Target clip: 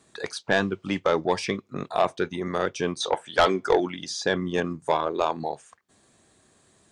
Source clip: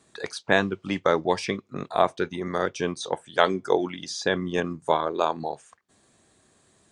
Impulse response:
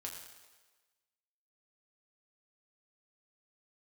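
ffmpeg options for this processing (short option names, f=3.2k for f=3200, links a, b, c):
-filter_complex "[0:a]asettb=1/sr,asplit=3[a][b][c];[a]atrim=end=3.004[d];[b]atrim=start=3:end=3.8,asetpts=PTS-STARTPTS,afade=t=in:d=0.004:c=qsin,afade=t=out:st=0.796:d=0.004:c=qsin,asplit=2[e][f];[f]highpass=f=720:p=1,volume=13dB,asoftclip=type=tanh:threshold=-1.5dB[g];[e][g]amix=inputs=2:normalize=0,lowpass=f=3.5k:p=1,volume=-6dB[h];[c]atrim=start=3.796[i];[d][h]acrossfade=d=0.004:c1=hsin:c2=qsin[j];[j][i]acrossfade=d=0.004:c1=qsin:c2=hsin,asoftclip=type=tanh:threshold=-11.5dB,volume=1dB"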